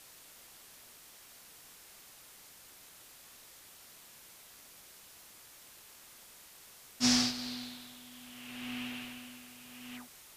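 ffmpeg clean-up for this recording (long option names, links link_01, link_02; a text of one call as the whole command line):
ffmpeg -i in.wav -af "afwtdn=0.002" out.wav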